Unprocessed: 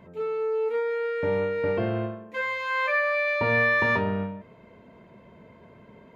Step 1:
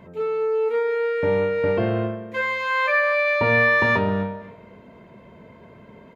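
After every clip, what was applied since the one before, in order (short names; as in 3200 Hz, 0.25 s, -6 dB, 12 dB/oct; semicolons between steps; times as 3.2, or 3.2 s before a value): feedback echo 0.264 s, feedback 24%, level -18.5 dB; gain +4.5 dB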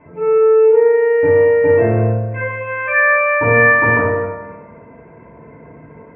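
steep low-pass 2500 Hz 48 dB/oct; FDN reverb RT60 1.1 s, low-frequency decay 1×, high-frequency decay 0.3×, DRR -8 dB; gain -3.5 dB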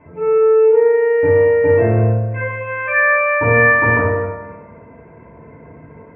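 bell 82 Hz +7 dB 0.66 oct; gain -1 dB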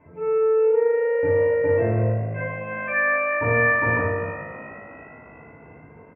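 frequency-shifting echo 0.358 s, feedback 58%, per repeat +52 Hz, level -16 dB; gain -7.5 dB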